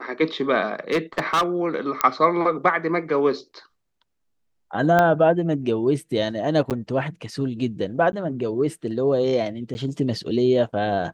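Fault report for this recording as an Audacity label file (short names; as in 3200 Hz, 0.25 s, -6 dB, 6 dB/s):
0.910000	1.430000	clipped -16 dBFS
2.010000	2.010000	pop -4 dBFS
4.990000	4.990000	pop -7 dBFS
6.700000	6.710000	gap 8.2 ms
8.120000	8.130000	gap 10 ms
9.740000	9.750000	gap 10 ms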